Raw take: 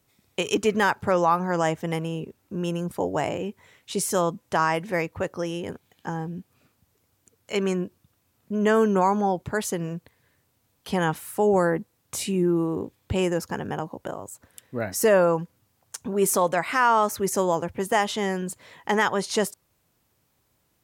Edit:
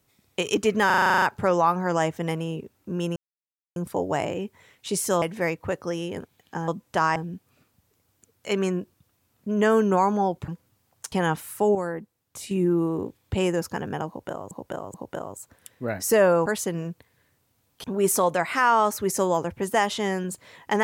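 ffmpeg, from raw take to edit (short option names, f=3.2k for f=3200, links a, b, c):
-filter_complex "[0:a]asplit=22[a][b][c][d][e][f][g][h][i][j][k][l][m][n][o][p][q][r][s][t][u][v];[a]atrim=end=0.902[w];[b]atrim=start=0.858:end=0.902[x];[c]atrim=start=0.858:end=0.902[y];[d]atrim=start=0.858:end=0.902[z];[e]atrim=start=0.858:end=0.902[aa];[f]atrim=start=0.858:end=0.902[ab];[g]atrim=start=0.858:end=0.902[ac];[h]atrim=start=0.858:end=0.902[ad];[i]atrim=start=0.858:end=0.902[ae];[j]atrim=start=0.858:end=2.8,asetpts=PTS-STARTPTS,afade=t=out:st=1.938:d=0.004:c=hsin,apad=pad_dur=0.6[af];[k]atrim=start=2.8:end=4.262,asetpts=PTS-STARTPTS,afade=t=in:d=0.004:c=hsin[ag];[l]atrim=start=4.738:end=6.202[ah];[m]atrim=start=4.258:end=4.742[ai];[n]atrim=start=6.198:end=9.522[aj];[o]atrim=start=15.378:end=16.022[ak];[p]atrim=start=10.898:end=11.532[al];[q]atrim=start=11.528:end=12.292,asetpts=PTS-STARTPTS,volume=-8dB[am];[r]atrim=start=12.288:end=14.292[an];[s]atrim=start=13.858:end=14.292[ao];[t]atrim=start=13.858:end=15.382[ap];[u]atrim=start=9.518:end=10.902[aq];[v]atrim=start=16.018[ar];[w][x]acrossfade=d=0.004:c1=hsin:c2=hsin[as];[as][y]acrossfade=d=0.004:c1=hsin:c2=hsin[at];[at][z]acrossfade=d=0.004:c1=hsin:c2=hsin[au];[au][aa]acrossfade=d=0.004:c1=hsin:c2=hsin[av];[av][ab]acrossfade=d=0.004:c1=hsin:c2=hsin[aw];[aw][ac]acrossfade=d=0.004:c1=hsin:c2=hsin[ax];[ax][ad]acrossfade=d=0.004:c1=hsin:c2=hsin[ay];[ay][ae]acrossfade=d=0.004:c1=hsin:c2=hsin[az];[af][ag]concat=n=2:v=0:a=1[ba];[az][ba]acrossfade=d=0.004:c1=hsin:c2=hsin[bb];[bb][ah]acrossfade=d=0.004:c1=hsin:c2=hsin[bc];[bc][ai]acrossfade=d=0.004:c1=hsin:c2=hsin[bd];[bd][aj]acrossfade=d=0.004:c1=hsin:c2=hsin[be];[be][ak]acrossfade=d=0.004:c1=hsin:c2=hsin[bf];[bf][al]acrossfade=d=0.004:c1=hsin:c2=hsin[bg];[bg][am]acrossfade=d=0.004:c1=hsin:c2=hsin[bh];[bh][an]acrossfade=d=0.004:c1=hsin:c2=hsin[bi];[bi][ao]acrossfade=d=0.004:c1=hsin:c2=hsin[bj];[bj][ap]acrossfade=d=0.004:c1=hsin:c2=hsin[bk];[bk][aq]acrossfade=d=0.004:c1=hsin:c2=hsin[bl];[bl][ar]acrossfade=d=0.004:c1=hsin:c2=hsin"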